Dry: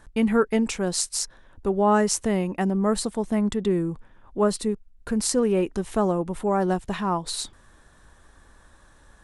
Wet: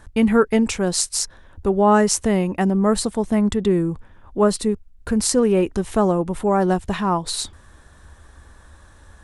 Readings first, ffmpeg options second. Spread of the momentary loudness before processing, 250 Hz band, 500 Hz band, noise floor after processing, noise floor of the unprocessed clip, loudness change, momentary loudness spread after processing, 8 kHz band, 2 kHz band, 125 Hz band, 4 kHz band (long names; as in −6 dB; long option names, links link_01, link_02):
10 LU, +5.0 dB, +4.5 dB, −49 dBFS, −55 dBFS, +4.5 dB, 10 LU, +4.5 dB, +4.5 dB, +5.0 dB, +4.5 dB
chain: -af "equalizer=frequency=76:width=2.3:gain=10.5,volume=4.5dB"